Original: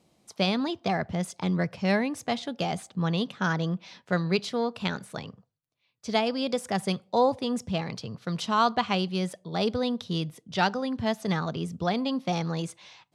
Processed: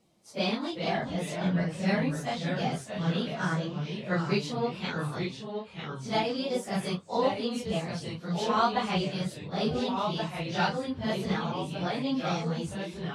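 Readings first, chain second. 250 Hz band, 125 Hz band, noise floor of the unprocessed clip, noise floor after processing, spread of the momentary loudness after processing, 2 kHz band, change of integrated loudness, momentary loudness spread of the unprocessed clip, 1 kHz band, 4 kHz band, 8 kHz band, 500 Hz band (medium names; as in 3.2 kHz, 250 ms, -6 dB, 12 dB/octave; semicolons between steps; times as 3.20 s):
-2.0 dB, -0.5 dB, -73 dBFS, -46 dBFS, 7 LU, -2.0 dB, -2.0 dB, 9 LU, -2.0 dB, -2.0 dB, -2.0 dB, -2.0 dB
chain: phase randomisation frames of 100 ms; de-esser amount 60%; ever faster or slower copies 354 ms, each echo -2 st, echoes 2, each echo -6 dB; trim -3 dB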